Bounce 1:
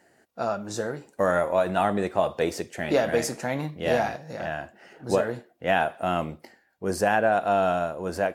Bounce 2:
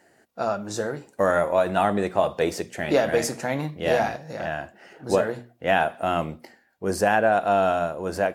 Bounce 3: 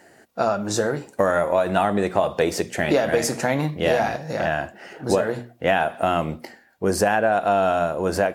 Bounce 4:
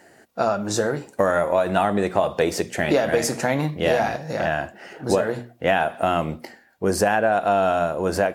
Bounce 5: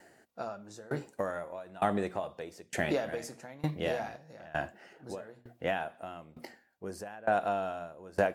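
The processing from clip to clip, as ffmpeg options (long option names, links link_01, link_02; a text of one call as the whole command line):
ffmpeg -i in.wav -af "bandreject=frequency=60:width_type=h:width=6,bandreject=frequency=120:width_type=h:width=6,bandreject=frequency=180:width_type=h:width=6,bandreject=frequency=240:width_type=h:width=6,volume=2dB" out.wav
ffmpeg -i in.wav -af "acompressor=threshold=-25dB:ratio=3,volume=7.5dB" out.wav
ffmpeg -i in.wav -af anull out.wav
ffmpeg -i in.wav -af "aeval=exprs='val(0)*pow(10,-24*if(lt(mod(1.1*n/s,1),2*abs(1.1)/1000),1-mod(1.1*n/s,1)/(2*abs(1.1)/1000),(mod(1.1*n/s,1)-2*abs(1.1)/1000)/(1-2*abs(1.1)/1000))/20)':channel_layout=same,volume=-5.5dB" out.wav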